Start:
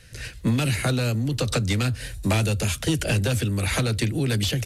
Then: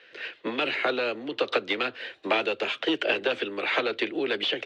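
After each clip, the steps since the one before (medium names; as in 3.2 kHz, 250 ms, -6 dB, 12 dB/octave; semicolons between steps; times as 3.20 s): Chebyshev band-pass 360–3300 Hz, order 3; trim +3 dB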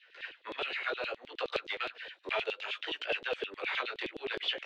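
chorus 0.65 Hz, delay 16.5 ms, depth 6.3 ms; LFO high-pass saw down 9.6 Hz 360–3800 Hz; trim -7 dB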